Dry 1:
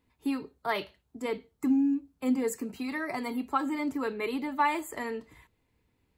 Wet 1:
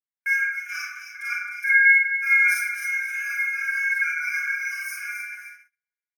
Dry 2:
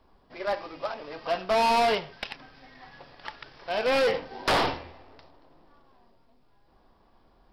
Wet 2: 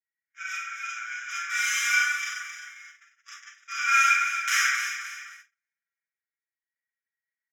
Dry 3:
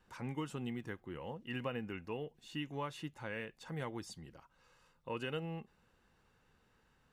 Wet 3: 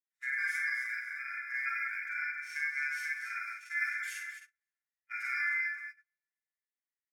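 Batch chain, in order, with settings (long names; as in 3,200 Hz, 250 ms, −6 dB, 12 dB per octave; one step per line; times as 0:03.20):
linear-phase brick-wall band-stop 560–3,000 Hz
dynamic equaliser 1,100 Hz, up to −7 dB, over −58 dBFS, Q 2.7
comb filter 7.2 ms, depth 95%
ring modulation 1,900 Hz
high-shelf EQ 11,000 Hz +5 dB
delay that swaps between a low-pass and a high-pass 132 ms, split 1,900 Hz, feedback 60%, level −4 dB
four-comb reverb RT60 0.44 s, combs from 32 ms, DRR −4 dB
noise gate −44 dBFS, range −39 dB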